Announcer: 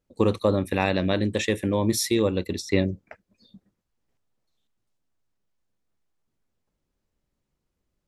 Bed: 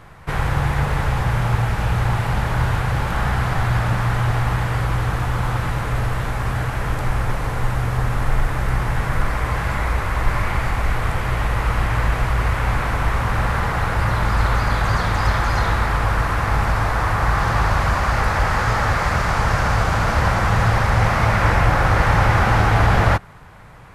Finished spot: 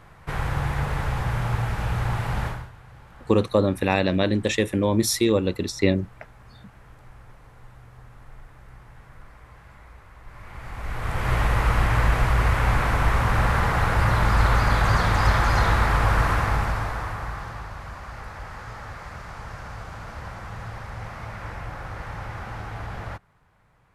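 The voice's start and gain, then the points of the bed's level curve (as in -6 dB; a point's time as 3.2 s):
3.10 s, +2.0 dB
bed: 2.47 s -6 dB
2.72 s -26.5 dB
10.23 s -26.5 dB
11.32 s -1 dB
16.31 s -1 dB
17.69 s -19 dB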